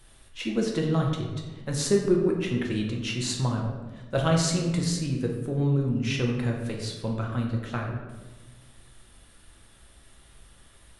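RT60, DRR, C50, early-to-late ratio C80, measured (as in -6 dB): 1.3 s, 0.0 dB, 4.0 dB, 6.0 dB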